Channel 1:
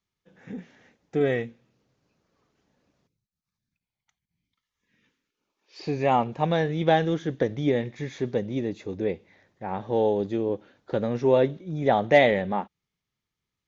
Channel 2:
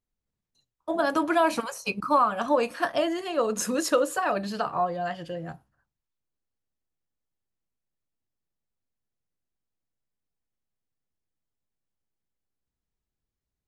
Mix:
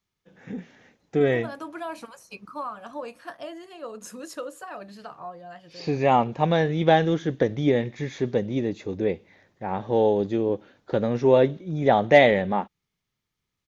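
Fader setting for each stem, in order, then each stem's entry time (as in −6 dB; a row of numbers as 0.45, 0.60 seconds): +2.5, −12.0 decibels; 0.00, 0.45 seconds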